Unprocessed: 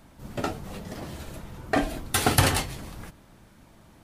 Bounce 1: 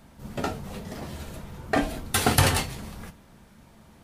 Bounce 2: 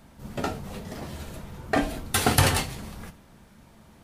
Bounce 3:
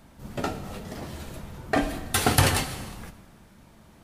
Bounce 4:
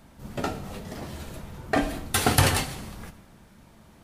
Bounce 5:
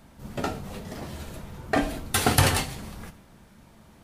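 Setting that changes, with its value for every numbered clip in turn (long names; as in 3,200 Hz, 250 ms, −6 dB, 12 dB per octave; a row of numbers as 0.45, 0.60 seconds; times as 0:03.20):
reverb whose tail is shaped and stops, gate: 90, 120, 460, 290, 180 milliseconds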